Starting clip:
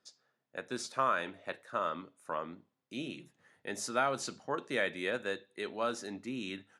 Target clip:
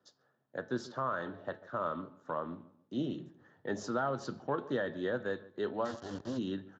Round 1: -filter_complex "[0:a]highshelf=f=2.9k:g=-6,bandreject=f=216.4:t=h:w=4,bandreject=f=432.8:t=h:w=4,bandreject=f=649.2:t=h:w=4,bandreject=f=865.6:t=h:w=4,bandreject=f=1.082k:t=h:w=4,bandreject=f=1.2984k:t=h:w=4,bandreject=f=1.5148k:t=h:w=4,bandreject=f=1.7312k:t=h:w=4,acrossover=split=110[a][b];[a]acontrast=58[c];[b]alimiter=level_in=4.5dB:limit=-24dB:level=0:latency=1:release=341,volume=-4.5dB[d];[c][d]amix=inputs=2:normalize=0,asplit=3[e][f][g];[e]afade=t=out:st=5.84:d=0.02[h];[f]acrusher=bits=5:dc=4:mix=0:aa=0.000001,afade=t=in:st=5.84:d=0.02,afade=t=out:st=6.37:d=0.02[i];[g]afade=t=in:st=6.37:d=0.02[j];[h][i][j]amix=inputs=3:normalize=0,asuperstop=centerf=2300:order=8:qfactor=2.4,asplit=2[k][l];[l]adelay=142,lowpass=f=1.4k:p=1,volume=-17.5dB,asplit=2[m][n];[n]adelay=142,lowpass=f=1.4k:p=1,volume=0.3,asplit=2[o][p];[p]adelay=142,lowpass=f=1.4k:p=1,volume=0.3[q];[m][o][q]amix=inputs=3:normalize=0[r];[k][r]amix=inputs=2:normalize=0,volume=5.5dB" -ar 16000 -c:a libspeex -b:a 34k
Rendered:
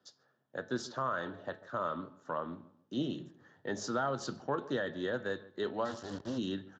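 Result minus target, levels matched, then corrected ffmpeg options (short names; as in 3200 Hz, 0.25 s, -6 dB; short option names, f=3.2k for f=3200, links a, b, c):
8000 Hz band +5.5 dB
-filter_complex "[0:a]highshelf=f=2.9k:g=-14.5,bandreject=f=216.4:t=h:w=4,bandreject=f=432.8:t=h:w=4,bandreject=f=649.2:t=h:w=4,bandreject=f=865.6:t=h:w=4,bandreject=f=1.082k:t=h:w=4,bandreject=f=1.2984k:t=h:w=4,bandreject=f=1.5148k:t=h:w=4,bandreject=f=1.7312k:t=h:w=4,acrossover=split=110[a][b];[a]acontrast=58[c];[b]alimiter=level_in=4.5dB:limit=-24dB:level=0:latency=1:release=341,volume=-4.5dB[d];[c][d]amix=inputs=2:normalize=0,asplit=3[e][f][g];[e]afade=t=out:st=5.84:d=0.02[h];[f]acrusher=bits=5:dc=4:mix=0:aa=0.000001,afade=t=in:st=5.84:d=0.02,afade=t=out:st=6.37:d=0.02[i];[g]afade=t=in:st=6.37:d=0.02[j];[h][i][j]amix=inputs=3:normalize=0,asuperstop=centerf=2300:order=8:qfactor=2.4,asplit=2[k][l];[l]adelay=142,lowpass=f=1.4k:p=1,volume=-17.5dB,asplit=2[m][n];[n]adelay=142,lowpass=f=1.4k:p=1,volume=0.3,asplit=2[o][p];[p]adelay=142,lowpass=f=1.4k:p=1,volume=0.3[q];[m][o][q]amix=inputs=3:normalize=0[r];[k][r]amix=inputs=2:normalize=0,volume=5.5dB" -ar 16000 -c:a libspeex -b:a 34k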